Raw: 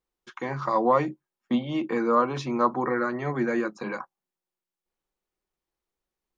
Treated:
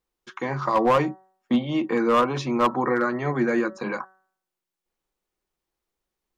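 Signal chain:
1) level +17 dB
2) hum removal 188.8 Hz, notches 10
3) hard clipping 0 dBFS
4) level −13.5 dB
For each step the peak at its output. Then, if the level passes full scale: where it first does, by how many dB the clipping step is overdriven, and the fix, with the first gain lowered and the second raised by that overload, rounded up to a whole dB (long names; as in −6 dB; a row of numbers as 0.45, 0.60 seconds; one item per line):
+7.0, +7.0, 0.0, −13.5 dBFS
step 1, 7.0 dB
step 1 +10 dB, step 4 −6.5 dB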